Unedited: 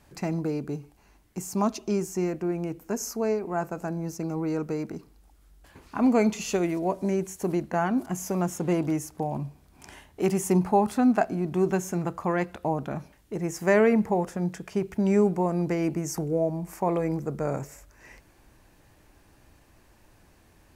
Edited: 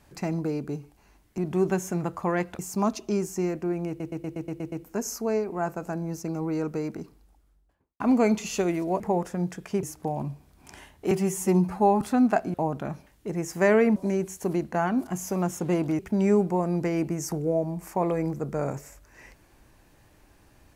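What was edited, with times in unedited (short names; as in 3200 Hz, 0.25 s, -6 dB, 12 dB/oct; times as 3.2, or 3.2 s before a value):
2.67 stutter 0.12 s, 8 plays
4.93–5.95 studio fade out
6.95–8.98 swap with 14.02–14.85
10.26–10.86 stretch 1.5×
11.39–12.6 move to 1.38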